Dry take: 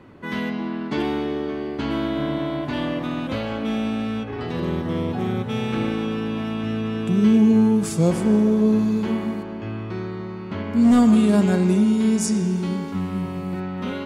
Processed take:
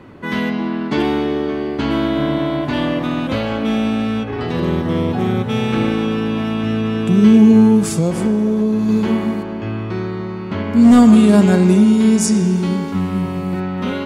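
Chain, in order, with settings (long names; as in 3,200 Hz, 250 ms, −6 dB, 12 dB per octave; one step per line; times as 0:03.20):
0:07.81–0:08.89: downward compressor, threshold −20 dBFS, peak gain reduction 6.5 dB
level +6.5 dB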